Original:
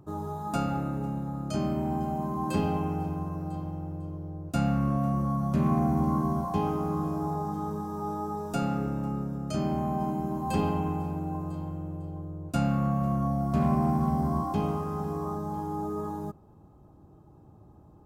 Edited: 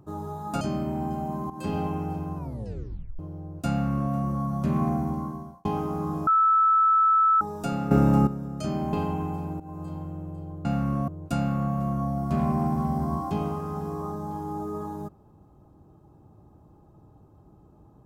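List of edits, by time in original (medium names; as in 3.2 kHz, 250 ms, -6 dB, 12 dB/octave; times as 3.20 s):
0.61–1.51 s: delete
2.40–2.68 s: fade in, from -14 dB
3.26 s: tape stop 0.83 s
4.60–5.03 s: copy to 12.31 s
5.77–6.55 s: fade out linear
7.17–8.31 s: bleep 1.31 kHz -16.5 dBFS
8.81–9.17 s: gain +12 dB
9.83–10.59 s: delete
11.26–11.64 s: fade in equal-power, from -15.5 dB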